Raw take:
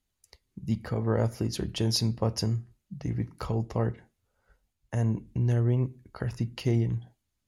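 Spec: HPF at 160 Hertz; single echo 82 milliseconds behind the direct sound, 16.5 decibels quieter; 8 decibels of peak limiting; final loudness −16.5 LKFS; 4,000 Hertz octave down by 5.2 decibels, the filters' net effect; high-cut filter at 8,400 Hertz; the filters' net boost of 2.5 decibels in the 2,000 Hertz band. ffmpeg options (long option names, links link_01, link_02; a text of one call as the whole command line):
ffmpeg -i in.wav -af "highpass=160,lowpass=8400,equalizer=frequency=2000:width_type=o:gain=5,equalizer=frequency=4000:width_type=o:gain=-8,alimiter=limit=-20.5dB:level=0:latency=1,aecho=1:1:82:0.15,volume=18dB" out.wav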